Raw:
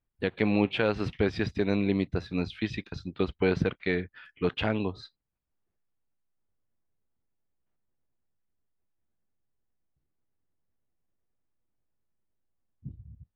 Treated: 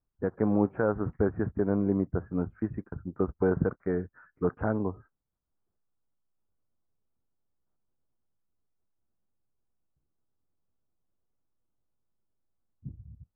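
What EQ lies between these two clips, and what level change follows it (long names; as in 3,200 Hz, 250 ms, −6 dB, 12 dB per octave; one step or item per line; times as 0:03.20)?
Butterworth low-pass 1,500 Hz 48 dB per octave
0.0 dB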